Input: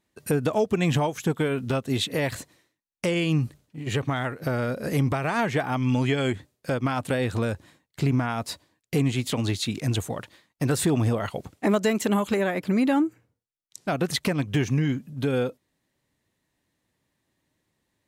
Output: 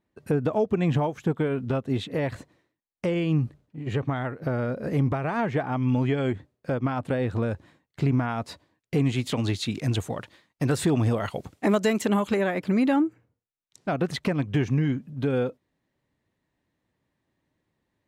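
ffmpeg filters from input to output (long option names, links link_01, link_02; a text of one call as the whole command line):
ffmpeg -i in.wav -af "asetnsamples=nb_out_samples=441:pad=0,asendcmd='7.51 lowpass f 2100;9.02 lowpass f 4700;11.11 lowpass f 9800;12.02 lowpass f 4600;12.96 lowpass f 2000',lowpass=frequency=1200:poles=1" out.wav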